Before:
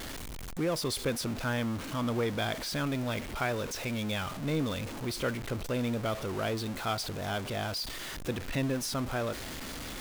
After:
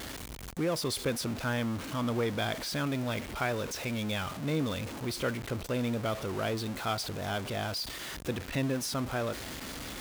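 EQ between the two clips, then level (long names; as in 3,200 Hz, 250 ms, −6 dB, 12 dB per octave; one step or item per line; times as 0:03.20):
high-pass filter 41 Hz
0.0 dB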